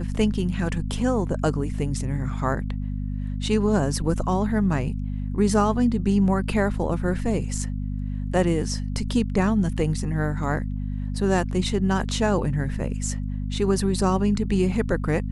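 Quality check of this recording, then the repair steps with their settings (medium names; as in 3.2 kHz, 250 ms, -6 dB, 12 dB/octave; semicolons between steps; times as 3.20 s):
hum 50 Hz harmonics 5 -28 dBFS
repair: de-hum 50 Hz, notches 5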